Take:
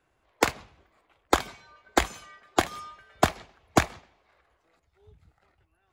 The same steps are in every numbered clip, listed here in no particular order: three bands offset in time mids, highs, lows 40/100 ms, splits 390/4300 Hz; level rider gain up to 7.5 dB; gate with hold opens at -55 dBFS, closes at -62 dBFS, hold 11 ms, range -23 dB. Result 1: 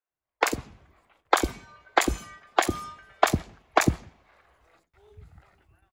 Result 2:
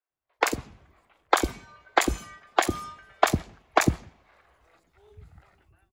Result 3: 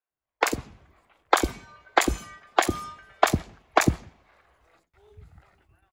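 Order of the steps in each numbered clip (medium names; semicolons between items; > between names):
level rider > three bands offset in time > gate with hold; level rider > gate with hold > three bands offset in time; three bands offset in time > level rider > gate with hold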